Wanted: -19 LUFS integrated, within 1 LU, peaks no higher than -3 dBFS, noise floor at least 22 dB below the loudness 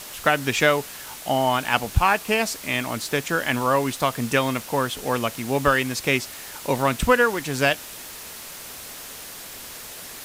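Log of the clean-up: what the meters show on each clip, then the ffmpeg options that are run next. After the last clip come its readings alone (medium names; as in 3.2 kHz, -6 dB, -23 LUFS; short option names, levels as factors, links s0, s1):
noise floor -39 dBFS; noise floor target -45 dBFS; loudness -22.5 LUFS; peak level -2.5 dBFS; loudness target -19.0 LUFS
-> -af "afftdn=nr=6:nf=-39"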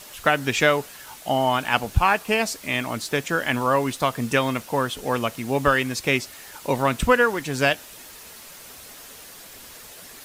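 noise floor -43 dBFS; noise floor target -45 dBFS
-> -af "afftdn=nr=6:nf=-43"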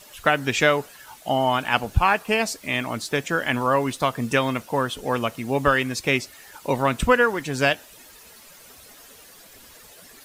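noise floor -48 dBFS; loudness -22.5 LUFS; peak level -2.5 dBFS; loudness target -19.0 LUFS
-> -af "volume=1.5,alimiter=limit=0.708:level=0:latency=1"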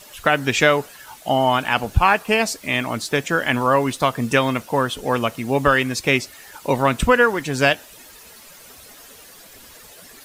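loudness -19.5 LUFS; peak level -3.0 dBFS; noise floor -45 dBFS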